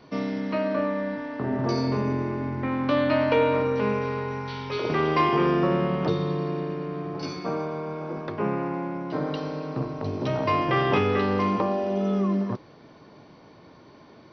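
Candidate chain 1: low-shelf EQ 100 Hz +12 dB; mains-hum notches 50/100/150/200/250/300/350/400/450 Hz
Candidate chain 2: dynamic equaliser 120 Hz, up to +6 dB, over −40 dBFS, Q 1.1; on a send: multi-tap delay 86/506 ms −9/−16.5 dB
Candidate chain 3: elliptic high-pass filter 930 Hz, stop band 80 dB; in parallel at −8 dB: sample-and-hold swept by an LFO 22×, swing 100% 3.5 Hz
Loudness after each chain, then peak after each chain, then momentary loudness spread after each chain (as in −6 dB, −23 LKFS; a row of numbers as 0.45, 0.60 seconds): −25.5, −24.0, −32.0 LKFS; −10.0, −8.5, −11.5 dBFS; 9, 10, 15 LU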